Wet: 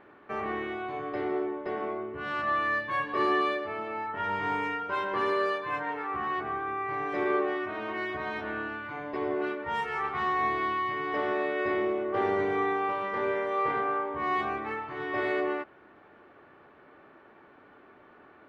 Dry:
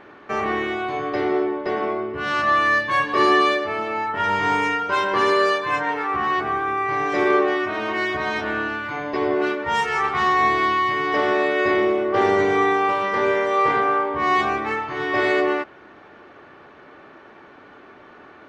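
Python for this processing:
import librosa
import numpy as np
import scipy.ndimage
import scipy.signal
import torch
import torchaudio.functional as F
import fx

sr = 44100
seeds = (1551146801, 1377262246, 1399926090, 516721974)

y = fx.peak_eq(x, sr, hz=6300.0, db=-12.5, octaves=1.3)
y = F.gain(torch.from_numpy(y), -9.0).numpy()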